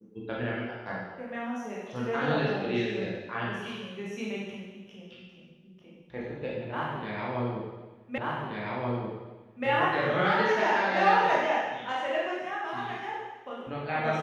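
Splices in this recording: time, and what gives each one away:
8.18 s: repeat of the last 1.48 s

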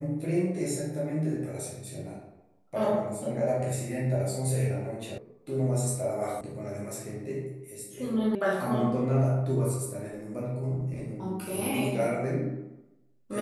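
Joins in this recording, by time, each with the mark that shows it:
5.18 s: sound stops dead
6.41 s: sound stops dead
8.35 s: sound stops dead

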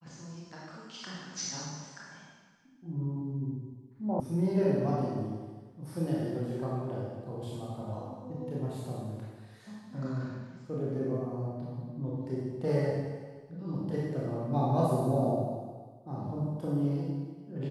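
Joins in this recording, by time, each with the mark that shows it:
4.20 s: sound stops dead

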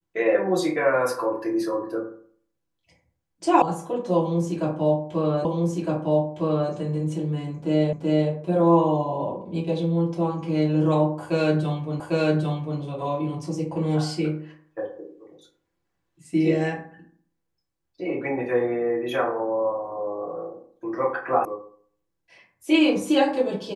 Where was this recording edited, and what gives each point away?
3.62 s: sound stops dead
5.45 s: repeat of the last 1.26 s
7.93 s: repeat of the last 0.38 s
12.00 s: repeat of the last 0.8 s
21.45 s: sound stops dead

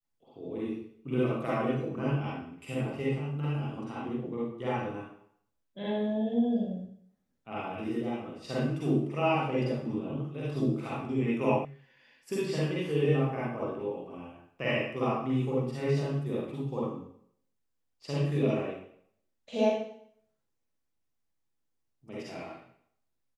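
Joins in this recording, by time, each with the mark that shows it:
11.65 s: sound stops dead

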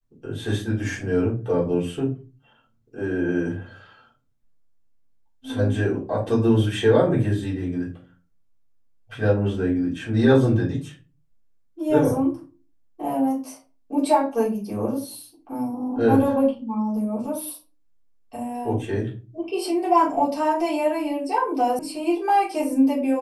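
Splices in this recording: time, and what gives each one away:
21.79 s: sound stops dead

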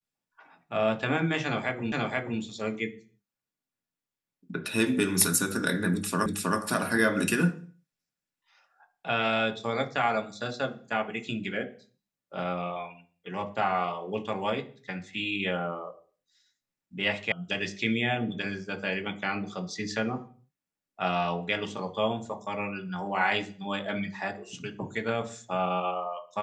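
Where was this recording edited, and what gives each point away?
1.92 s: repeat of the last 0.48 s
6.26 s: repeat of the last 0.32 s
17.32 s: sound stops dead

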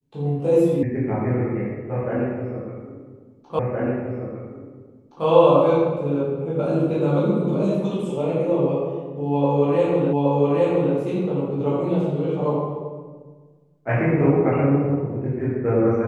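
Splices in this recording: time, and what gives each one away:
0.83 s: sound stops dead
3.59 s: repeat of the last 1.67 s
10.13 s: repeat of the last 0.82 s

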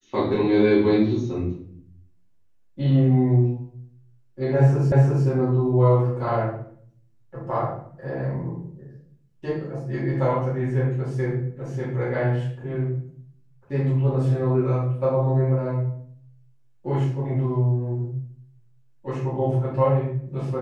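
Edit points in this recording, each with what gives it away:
4.92 s: repeat of the last 0.35 s

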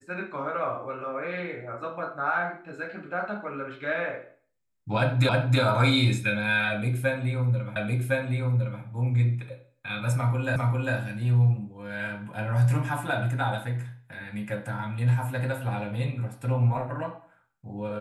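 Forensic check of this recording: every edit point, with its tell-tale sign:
5.29 s: repeat of the last 0.32 s
7.76 s: repeat of the last 1.06 s
10.56 s: repeat of the last 0.4 s

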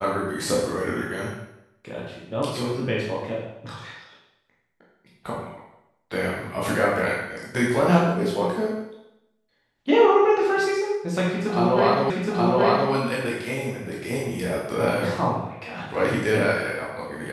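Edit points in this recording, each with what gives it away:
12.10 s: repeat of the last 0.82 s

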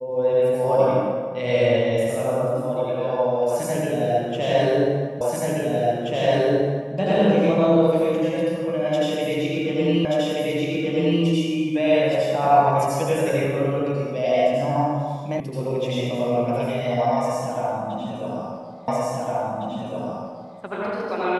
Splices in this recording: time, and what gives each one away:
5.21 s: repeat of the last 1.73 s
10.05 s: repeat of the last 1.18 s
15.40 s: sound stops dead
18.88 s: repeat of the last 1.71 s

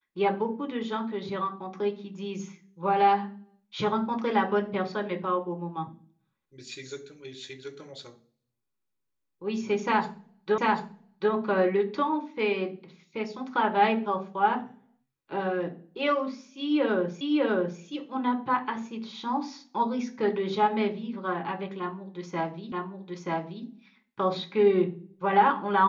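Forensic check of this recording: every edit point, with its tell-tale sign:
10.58 s: repeat of the last 0.74 s
17.21 s: repeat of the last 0.6 s
22.72 s: repeat of the last 0.93 s

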